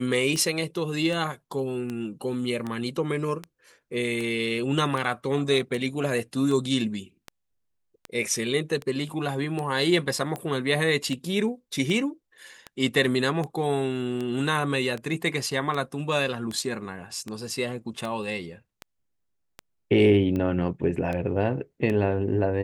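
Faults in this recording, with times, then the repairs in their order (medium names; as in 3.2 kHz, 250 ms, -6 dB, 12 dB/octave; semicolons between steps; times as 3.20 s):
tick 78 rpm -19 dBFS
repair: de-click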